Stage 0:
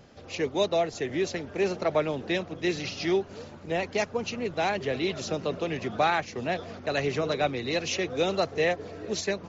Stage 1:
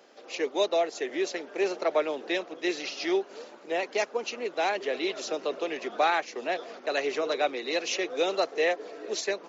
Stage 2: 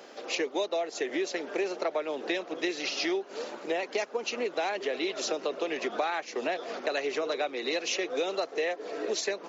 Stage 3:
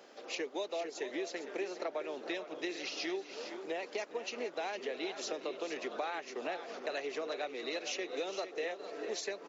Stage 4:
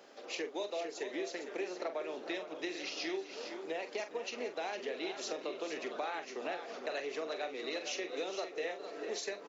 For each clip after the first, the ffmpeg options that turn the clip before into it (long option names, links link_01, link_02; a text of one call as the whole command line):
ffmpeg -i in.wav -af "highpass=frequency=320:width=0.5412,highpass=frequency=320:width=1.3066" out.wav
ffmpeg -i in.wav -af "acompressor=threshold=-36dB:ratio=6,volume=8dB" out.wav
ffmpeg -i in.wav -af "aecho=1:1:412|456:0.15|0.282,volume=-8dB" out.wav
ffmpeg -i in.wav -filter_complex "[0:a]asplit=2[link_01][link_02];[link_02]adelay=44,volume=-9.5dB[link_03];[link_01][link_03]amix=inputs=2:normalize=0,volume=-1dB" out.wav